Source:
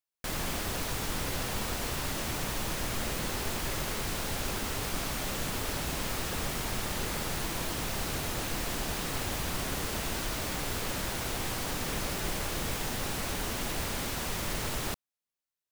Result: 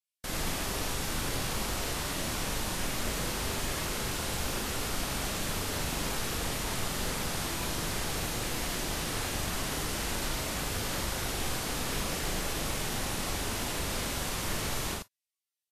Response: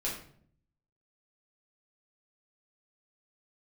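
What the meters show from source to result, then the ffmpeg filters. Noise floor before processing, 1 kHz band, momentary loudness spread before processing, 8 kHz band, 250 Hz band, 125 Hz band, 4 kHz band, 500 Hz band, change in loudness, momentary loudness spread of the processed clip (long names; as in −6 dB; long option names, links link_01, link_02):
below −85 dBFS, +0.5 dB, 0 LU, +2.0 dB, +0.5 dB, +0.5 dB, +1.5 dB, +0.5 dB, +0.5 dB, 0 LU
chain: -af "aecho=1:1:41|80:0.596|0.668,volume=-2dB" -ar 44100 -c:a libvorbis -b:a 32k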